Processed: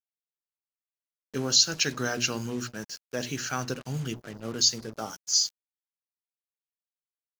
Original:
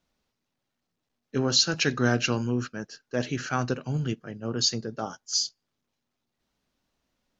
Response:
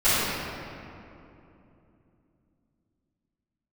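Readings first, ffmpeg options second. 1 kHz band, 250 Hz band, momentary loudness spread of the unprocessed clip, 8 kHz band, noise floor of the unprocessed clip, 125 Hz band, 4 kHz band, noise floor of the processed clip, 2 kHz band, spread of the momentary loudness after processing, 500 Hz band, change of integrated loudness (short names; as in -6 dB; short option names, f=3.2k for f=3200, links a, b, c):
-3.5 dB, -5.5 dB, 12 LU, n/a, -82 dBFS, -6.0 dB, +1.0 dB, under -85 dBFS, -2.5 dB, 16 LU, -4.5 dB, +0.5 dB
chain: -filter_complex "[0:a]aemphasis=mode=production:type=75fm,bandreject=f=60:t=h:w=6,bandreject=f=120:t=h:w=6,bandreject=f=180:t=h:w=6,bandreject=f=240:t=h:w=6,bandreject=f=300:t=h:w=6,bandreject=f=360:t=h:w=6,asplit=2[a][b];[b]acompressor=threshold=-27dB:ratio=6,volume=-2dB[c];[a][c]amix=inputs=2:normalize=0,acrusher=bits=5:mix=0:aa=0.5,volume=-7dB"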